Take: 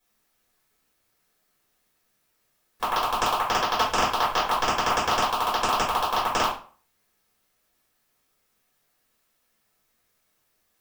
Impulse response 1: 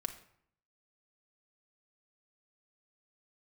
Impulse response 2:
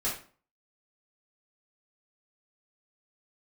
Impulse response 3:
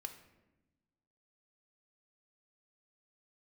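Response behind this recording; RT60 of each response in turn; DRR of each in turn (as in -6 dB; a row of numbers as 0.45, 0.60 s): 2; 0.65, 0.40, 1.0 s; 5.0, -9.0, 6.5 dB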